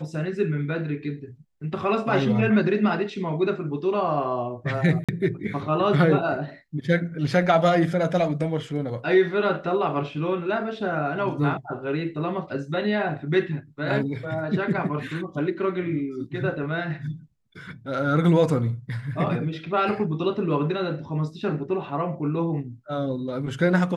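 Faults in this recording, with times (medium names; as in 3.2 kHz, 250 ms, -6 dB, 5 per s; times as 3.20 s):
5.04–5.09 s: dropout 46 ms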